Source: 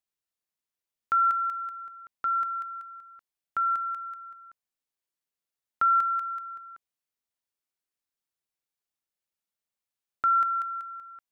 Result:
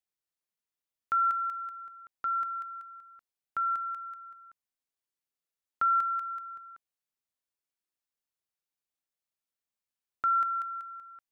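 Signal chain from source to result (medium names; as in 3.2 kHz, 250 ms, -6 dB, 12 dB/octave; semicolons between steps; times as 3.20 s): 6.29–6.71 s: bass shelf 390 Hz +5 dB; trim -3.5 dB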